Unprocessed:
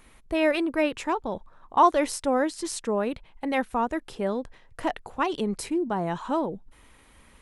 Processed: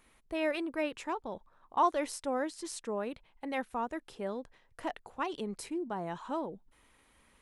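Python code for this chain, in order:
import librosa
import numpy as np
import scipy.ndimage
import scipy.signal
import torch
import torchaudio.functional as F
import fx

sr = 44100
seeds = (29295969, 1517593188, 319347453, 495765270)

y = fx.low_shelf(x, sr, hz=160.0, db=-6.0)
y = y * 10.0 ** (-8.5 / 20.0)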